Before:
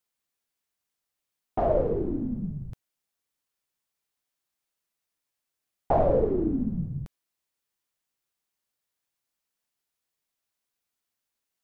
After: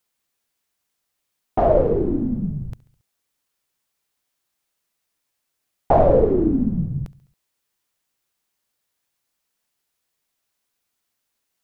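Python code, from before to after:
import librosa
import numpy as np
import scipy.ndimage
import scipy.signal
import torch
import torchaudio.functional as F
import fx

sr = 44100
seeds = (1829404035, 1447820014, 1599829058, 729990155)

y = fx.echo_feedback(x, sr, ms=69, feedback_pct=56, wet_db=-21.5)
y = y * librosa.db_to_amplitude(7.5)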